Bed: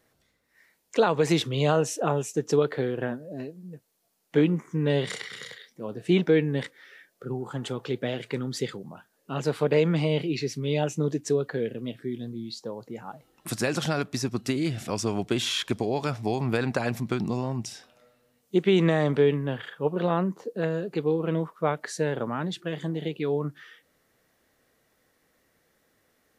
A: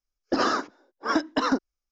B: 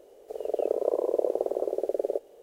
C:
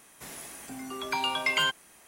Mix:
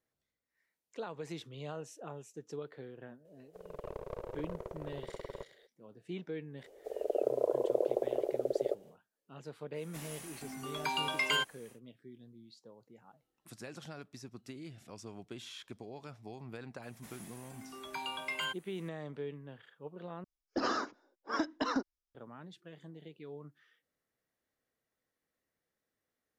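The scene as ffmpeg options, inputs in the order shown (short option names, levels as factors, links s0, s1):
-filter_complex "[2:a]asplit=2[s0][s1];[3:a]asplit=2[s2][s3];[0:a]volume=0.1[s4];[s0]aeval=exprs='clip(val(0),-1,0.02)':c=same[s5];[s3]adynamicequalizer=threshold=0.00178:dfrequency=5500:dqfactor=2.4:tfrequency=5500:tqfactor=2.4:attack=5:release=100:ratio=0.375:range=4:mode=cutabove:tftype=bell[s6];[s4]asplit=2[s7][s8];[s7]atrim=end=20.244[s9];[1:a]atrim=end=1.91,asetpts=PTS-STARTPTS,volume=0.335[s10];[s8]atrim=start=22.146[s11];[s5]atrim=end=2.42,asetpts=PTS-STARTPTS,volume=0.211,afade=t=in:d=0.004:c=hsin,afade=t=out:st=2.416:d=0.004:c=hsin,adelay=143325S[s12];[s1]atrim=end=2.42,asetpts=PTS-STARTPTS,volume=0.596,afade=t=in:d=0.1,afade=t=out:st=2.32:d=0.1,adelay=6560[s13];[s2]atrim=end=2.07,asetpts=PTS-STARTPTS,volume=0.562,afade=t=in:d=0.1,afade=t=out:st=1.97:d=0.1,adelay=9730[s14];[s6]atrim=end=2.07,asetpts=PTS-STARTPTS,volume=0.299,afade=t=in:d=0.004:c=hsin,afade=t=out:st=2.066:d=0.004:c=hsin,adelay=16820[s15];[s9][s10]acrossfade=d=0.004:c1=hsin:c2=hsin[s16];[s16][s11]acrossfade=d=0.004:c1=hsin:c2=hsin[s17];[s17][s12][s13][s14][s15]amix=inputs=5:normalize=0"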